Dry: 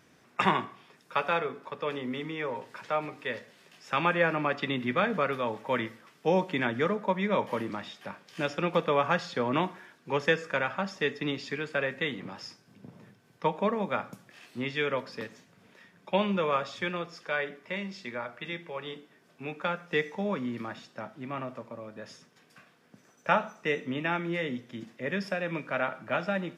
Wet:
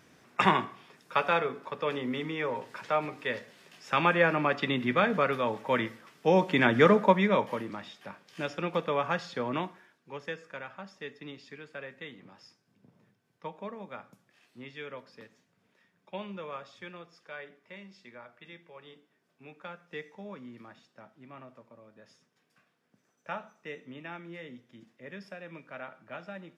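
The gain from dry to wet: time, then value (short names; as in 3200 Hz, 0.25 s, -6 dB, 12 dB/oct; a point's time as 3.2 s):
6.28 s +1.5 dB
6.97 s +9 dB
7.62 s -3.5 dB
9.49 s -3.5 dB
10.11 s -12.5 dB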